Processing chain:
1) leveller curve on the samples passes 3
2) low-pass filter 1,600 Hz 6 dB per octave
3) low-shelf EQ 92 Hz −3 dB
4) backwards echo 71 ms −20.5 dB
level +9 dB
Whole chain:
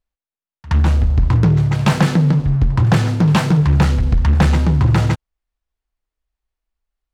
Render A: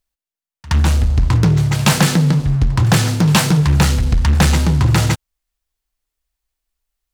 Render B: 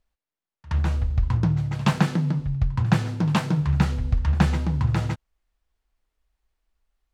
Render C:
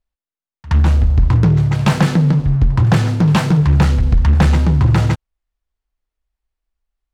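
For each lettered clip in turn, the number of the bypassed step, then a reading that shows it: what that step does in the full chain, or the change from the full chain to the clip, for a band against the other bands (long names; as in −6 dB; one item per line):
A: 2, 8 kHz band +12.0 dB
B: 1, change in crest factor +8.0 dB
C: 3, change in integrated loudness +1.0 LU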